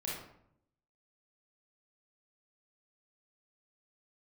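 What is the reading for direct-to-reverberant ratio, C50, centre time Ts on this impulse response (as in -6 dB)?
-5.5 dB, 0.5 dB, 57 ms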